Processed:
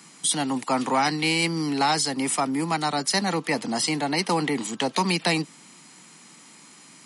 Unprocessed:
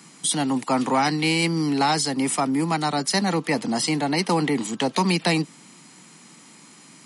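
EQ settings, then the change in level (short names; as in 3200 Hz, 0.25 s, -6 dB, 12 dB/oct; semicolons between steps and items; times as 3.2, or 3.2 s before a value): low shelf 430 Hz -5 dB; 0.0 dB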